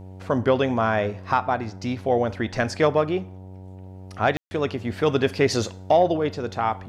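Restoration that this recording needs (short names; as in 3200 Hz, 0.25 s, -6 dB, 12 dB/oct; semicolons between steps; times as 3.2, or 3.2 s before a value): de-hum 93.9 Hz, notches 10; room tone fill 4.37–4.51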